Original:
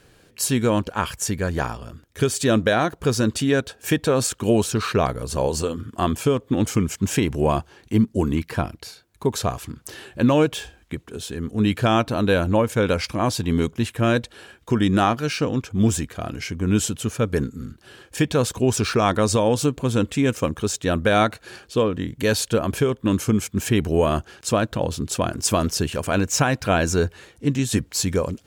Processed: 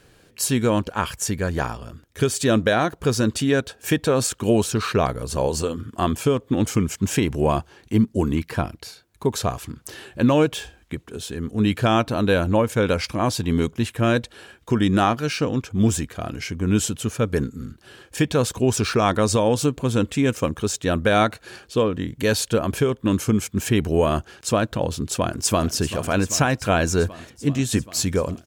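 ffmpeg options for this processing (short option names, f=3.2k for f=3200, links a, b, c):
-filter_complex "[0:a]asplit=2[a][b];[b]afade=t=in:st=25.23:d=0.01,afade=t=out:st=25.73:d=0.01,aecho=0:1:390|780|1170|1560|1950|2340|2730|3120|3510|3900|4290|4680:0.199526|0.159621|0.127697|0.102157|0.0817259|0.0653808|0.0523046|0.0418437|0.0334749|0.02678|0.021424|0.0171392[c];[a][c]amix=inputs=2:normalize=0"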